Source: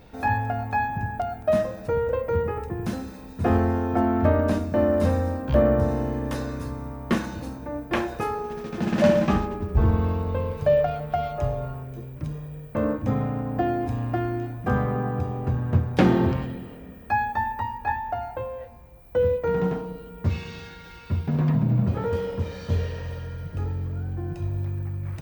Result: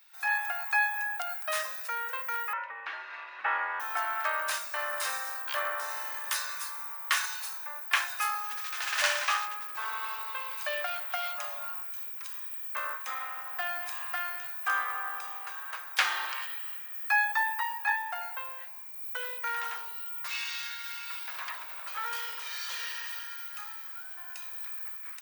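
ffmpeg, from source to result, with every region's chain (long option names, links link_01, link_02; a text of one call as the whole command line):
ffmpeg -i in.wav -filter_complex "[0:a]asettb=1/sr,asplit=3[link_01][link_02][link_03];[link_01]atrim=end=2.534[link_04];[link_02]atrim=start=2.53:end=3.8,asetpts=PTS-STARTPTS,afade=type=in:duration=0.004:curve=qsin,afade=type=out:start_time=1.266:duration=0.004:curve=qsin,lowpass=frequency=2600:width=0.5412,lowpass=frequency=2600:width=1.3066,acompressor=mode=upward:threshold=-24dB:ratio=2.5:attack=3.2:release=140:knee=2.83:detection=peak,afreqshift=110[link_05];[link_03]atrim=start=3.796[link_06];[link_04][link_05]acrossfade=duration=0.004:curve1=hsin:curve2=qsin[link_07];[link_07][link_06]acrossfade=duration=0.004:curve1=qsin:curve2=hsin,highpass=frequency=1200:width=0.5412,highpass=frequency=1200:width=1.3066,highshelf=frequency=6100:gain=11.5,dynaudnorm=framelen=110:gausssize=5:maxgain=12dB,volume=-7dB" out.wav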